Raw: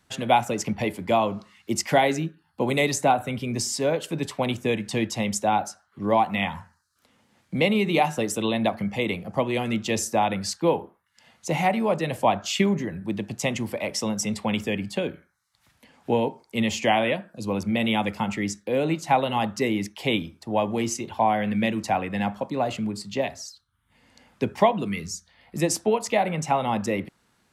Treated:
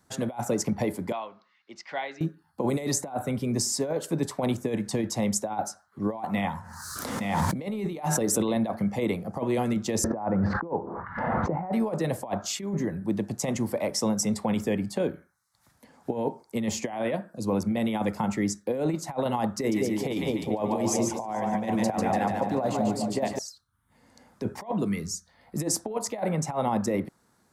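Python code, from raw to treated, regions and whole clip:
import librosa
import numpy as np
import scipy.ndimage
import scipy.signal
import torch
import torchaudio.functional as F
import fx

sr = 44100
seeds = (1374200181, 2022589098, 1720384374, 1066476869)

y = fx.chain(x, sr, fx.bandpass_q(hz=3000.0, q=1.2),
    fx.air_absorb(metres=200.0), at=(1.12, 2.21))
y = fx.chain(y, sr, fx.echo_single(ms=866, db=-20.0),
    fx.pre_swell(db_per_s=28.0), at=(6.34, 8.56))
y = fx.chain(y, sr, fx.lowpass(hz=1500.0, slope=24),
    fx.pre_swell(db_per_s=25.0), at=(10.04, 11.73))
y = fx.chain(y, sr, fx.hum_notches(base_hz=50, count=7),
    fx.echo_split(split_hz=800.0, low_ms=203, high_ms=145, feedback_pct=52, wet_db=-4.5), at=(19.57, 23.39))
y = fx.low_shelf(y, sr, hz=82.0, db=-6.5)
y = fx.over_compress(y, sr, threshold_db=-25.0, ratio=-0.5)
y = fx.peak_eq(y, sr, hz=2800.0, db=-13.5, octaves=1.0)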